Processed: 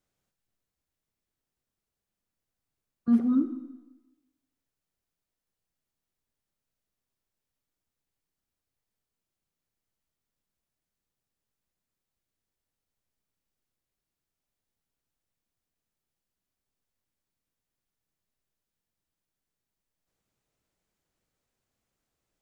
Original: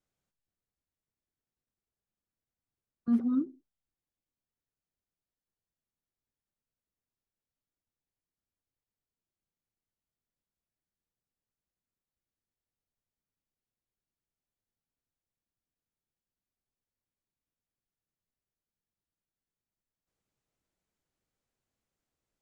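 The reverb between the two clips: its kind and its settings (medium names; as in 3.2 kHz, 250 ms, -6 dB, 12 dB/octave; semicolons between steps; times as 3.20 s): algorithmic reverb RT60 1.1 s, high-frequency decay 1×, pre-delay 5 ms, DRR 10 dB; trim +4.5 dB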